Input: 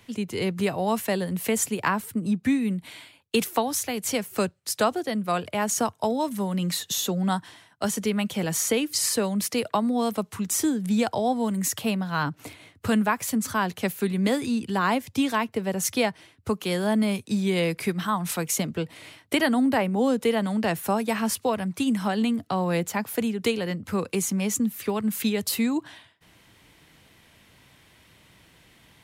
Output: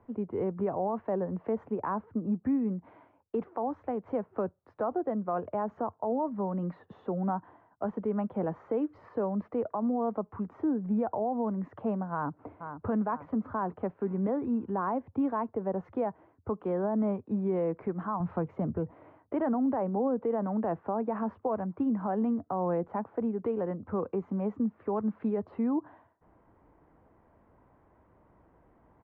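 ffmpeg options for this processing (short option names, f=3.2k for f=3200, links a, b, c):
-filter_complex "[0:a]asplit=2[a][b];[b]afade=t=in:st=12.12:d=0.01,afade=t=out:st=12.86:d=0.01,aecho=0:1:480|960|1440|1920|2400:0.298538|0.134342|0.060454|0.0272043|0.0122419[c];[a][c]amix=inputs=2:normalize=0,asettb=1/sr,asplit=3[d][e][f];[d]atrim=end=18.204[g];[e]atrim=start=18.2:end=18.91,asetpts=PTS-STARTPTS,afade=t=in:d=0.004:c=qsin,afade=t=out:st=0.706:d=0.004:c=qsin,equalizer=f=94:t=o:w=1.7:g=13.5[h];[f]atrim=start=18.906[i];[g][h]acrossfade=d=0.004:c1=hsin:c2=qsin[j];[j][i]acrossfade=d=0.004:c1=qsin:c2=hsin,lowpass=f=1.1k:w=0.5412,lowpass=f=1.1k:w=1.3066,equalizer=f=140:w=0.98:g=-8.5,alimiter=limit=-22dB:level=0:latency=1:release=42"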